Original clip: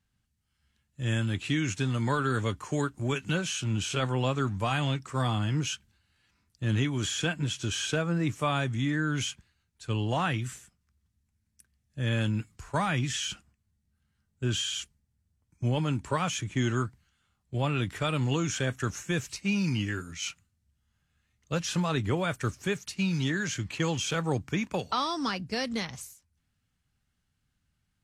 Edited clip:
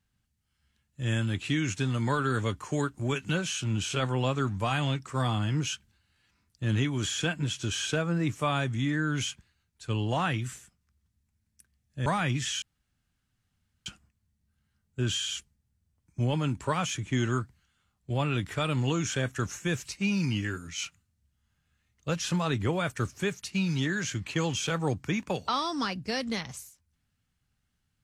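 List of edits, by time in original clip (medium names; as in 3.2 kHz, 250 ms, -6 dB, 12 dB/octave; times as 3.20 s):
12.06–12.74 s: delete
13.30 s: insert room tone 1.24 s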